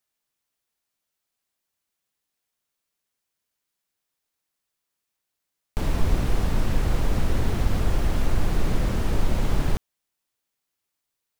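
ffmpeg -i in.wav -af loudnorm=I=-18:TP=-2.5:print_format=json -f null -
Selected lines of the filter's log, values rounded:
"input_i" : "-27.4",
"input_tp" : "-8.3",
"input_lra" : "4.0",
"input_thresh" : "-37.5",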